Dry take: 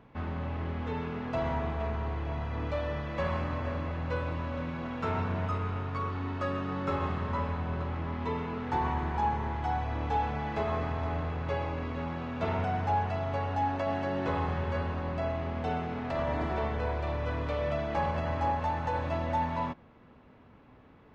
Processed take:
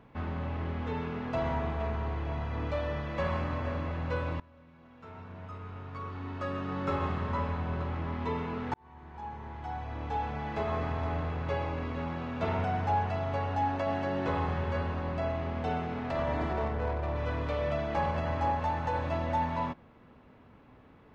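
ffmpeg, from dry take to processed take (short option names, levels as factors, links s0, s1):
-filter_complex "[0:a]asettb=1/sr,asplit=3[s0][s1][s2];[s0]atrim=end=16.534[s3];[s1]atrim=start=16.53:end=17.16,asetpts=PTS-STARTPTS,afade=t=in:d=0.004:c=qsin,afade=t=out:st=0.626:d=0.004:c=qsin,adynamicsmooth=sensitivity=4:basefreq=1600[s4];[s2]atrim=start=17.156[s5];[s3][s4]acrossfade=d=0.004:c1=hsin:c2=qsin[s6];[s6][s5]acrossfade=d=0.004:c1=qsin:c2=hsin,asplit=3[s7][s8][s9];[s7]atrim=end=4.4,asetpts=PTS-STARTPTS,afade=t=out:st=4.396:d=0.004:c=hsin:silence=0.0749894[s10];[s8]atrim=start=4.4:end=8.74,asetpts=PTS-STARTPTS,afade=t=in:d=2.46:c=qua:silence=0.0749894,afade=t=out:st=4.336:d=0.004:c=hsin[s11];[s9]atrim=start=8.74,asetpts=PTS-STARTPTS,afade=t=in:d=2.17[s12];[s10][s11][s12]concat=n=3:v=0:a=1"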